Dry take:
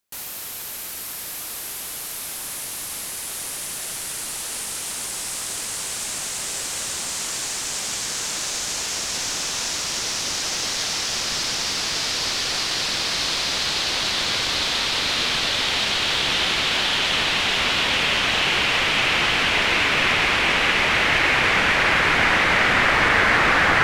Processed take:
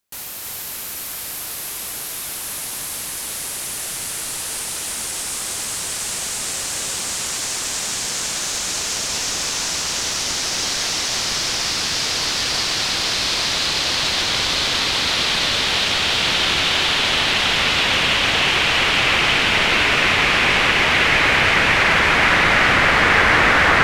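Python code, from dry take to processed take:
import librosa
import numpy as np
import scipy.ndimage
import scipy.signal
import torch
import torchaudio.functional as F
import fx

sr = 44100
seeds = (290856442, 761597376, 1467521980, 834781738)

y = fx.peak_eq(x, sr, hz=75.0, db=2.5, octaves=1.8)
y = y + 10.0 ** (-3.5 / 20.0) * np.pad(y, (int(322 * sr / 1000.0), 0))[:len(y)]
y = F.gain(torch.from_numpy(y), 1.5).numpy()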